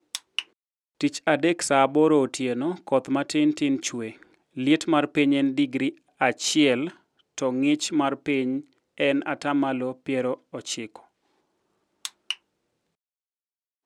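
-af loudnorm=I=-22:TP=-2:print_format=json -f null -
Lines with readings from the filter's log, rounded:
"input_i" : "-24.7",
"input_tp" : "-5.0",
"input_lra" : "17.1",
"input_thresh" : "-35.5",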